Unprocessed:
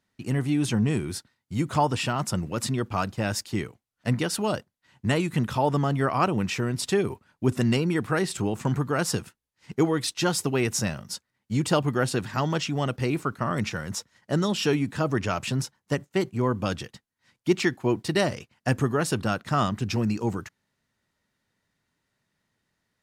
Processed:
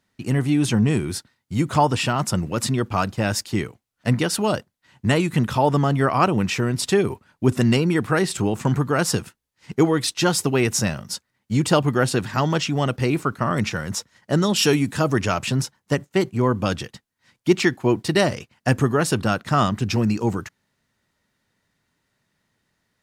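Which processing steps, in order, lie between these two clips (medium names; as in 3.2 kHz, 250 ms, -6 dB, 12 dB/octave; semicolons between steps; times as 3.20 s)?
14.55–15.33 s: peaking EQ 11 kHz +11 dB -> +4.5 dB 1.8 oct; trim +5 dB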